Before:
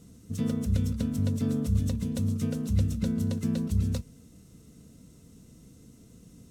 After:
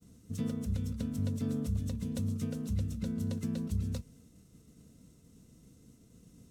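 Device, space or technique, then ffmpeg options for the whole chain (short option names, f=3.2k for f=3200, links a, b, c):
clipper into limiter: -af "asoftclip=type=hard:threshold=-15.5dB,alimiter=limit=-19.5dB:level=0:latency=1:release=418,agate=range=-33dB:threshold=-50dB:ratio=3:detection=peak,volume=-4.5dB"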